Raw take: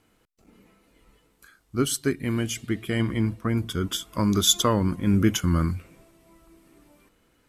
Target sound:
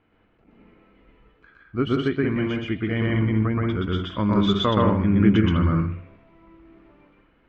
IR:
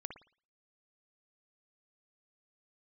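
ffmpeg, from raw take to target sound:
-filter_complex "[0:a]lowpass=f=2.8k:w=0.5412,lowpass=f=2.8k:w=1.3066,asplit=2[a][b];[1:a]atrim=start_sample=2205,adelay=124[c];[b][c]afir=irnorm=-1:irlink=0,volume=4.5dB[d];[a][d]amix=inputs=2:normalize=0"

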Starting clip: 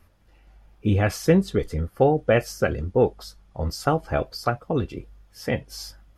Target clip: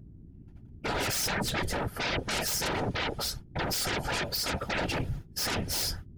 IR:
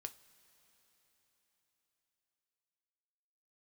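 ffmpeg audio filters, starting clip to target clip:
-filter_complex "[0:a]agate=range=-38dB:threshold=-47dB:ratio=16:detection=peak,asettb=1/sr,asplit=3[a][b][c];[a]atrim=end=2.264[d];[b]atrim=start=2.26:end=4.34,asetpts=PTS-STARTPTS,afade=t=in:d=0.004:c=qsin,afade=t=out:st=2.076:d=0.004:c=qsin,aecho=1:1:7.3:0.97,atrim=end_sample=91728[e];[c]atrim=start=4.336[f];[d][e]acrossfade=d=0.004:c1=hsin:c2=qsin[g];[g][f]acrossfade=d=0.004:c1=qsin:c2=hsin,dynaudnorm=f=130:g=9:m=12dB,alimiter=limit=-15.5dB:level=0:latency=1:release=104,aeval=exprs='0.168*sin(PI/2*6.31*val(0)/0.168)':c=same,aeval=exprs='val(0)+0.0158*(sin(2*PI*60*n/s)+sin(2*PI*2*60*n/s)/2+sin(2*PI*3*60*n/s)/3+sin(2*PI*4*60*n/s)/4+sin(2*PI*5*60*n/s)/5)':c=same,afftfilt=real='hypot(re,im)*cos(2*PI*random(0))':imag='hypot(re,im)*sin(2*PI*random(1))':win_size=512:overlap=0.75,asuperstop=centerf=1100:order=4:qfactor=7.5,volume=-5.5dB"

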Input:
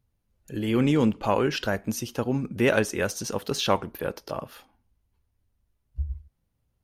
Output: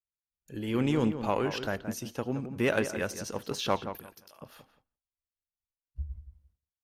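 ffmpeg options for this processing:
-filter_complex "[0:a]aeval=exprs='0.447*(cos(1*acos(clip(val(0)/0.447,-1,1)))-cos(1*PI/2))+0.0141*(cos(7*acos(clip(val(0)/0.447,-1,1)))-cos(7*PI/2))':c=same,asettb=1/sr,asplit=3[a][b][c];[a]atrim=end=3.974[d];[b]atrim=start=3.97:end=4.41,asetpts=PTS-STARTPTS,afade=t=in:d=0.004:c=qsin,afade=t=out:st=0.436:d=0.004:c=qsin,aderivative[e];[c]atrim=start=4.406[f];[d][e]acrossfade=d=0.004:c1=hsin:c2=qsin[g];[g][f]acrossfade=d=0.004:c1=qsin:c2=hsin,asplit=2[h][i];[i]adelay=173,lowpass=f=2.1k:p=1,volume=-9.5dB,asplit=2[j][k];[k]adelay=173,lowpass=f=2.1k:p=1,volume=0.21,asplit=2[l][m];[m]adelay=173,lowpass=f=2.1k:p=1,volume=0.21[n];[h][j][l][n]amix=inputs=4:normalize=0,agate=range=-33dB:threshold=-56dB:ratio=3:detection=peak,volume=-5dB"

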